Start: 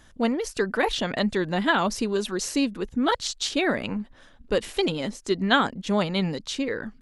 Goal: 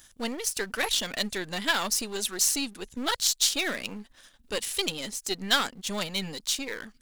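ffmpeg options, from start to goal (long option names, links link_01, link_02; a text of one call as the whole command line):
ffmpeg -i in.wav -af "aeval=exprs='if(lt(val(0),0),0.447*val(0),val(0))':channel_layout=same,crystalizer=i=8.5:c=0,volume=-8dB" out.wav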